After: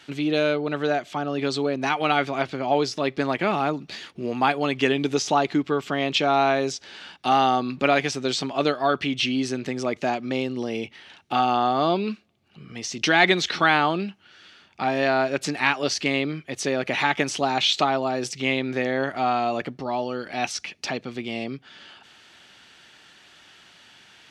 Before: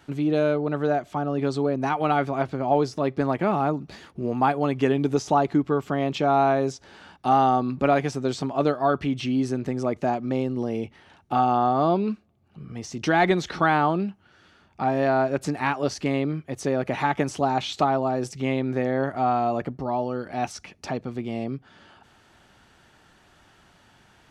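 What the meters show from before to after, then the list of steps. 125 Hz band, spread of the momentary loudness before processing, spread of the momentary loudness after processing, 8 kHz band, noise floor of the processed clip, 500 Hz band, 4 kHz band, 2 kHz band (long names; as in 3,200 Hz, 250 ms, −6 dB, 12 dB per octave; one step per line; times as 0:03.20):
−4.5 dB, 10 LU, 11 LU, +7.5 dB, −54 dBFS, −0.5 dB, +11.0 dB, +6.5 dB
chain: meter weighting curve D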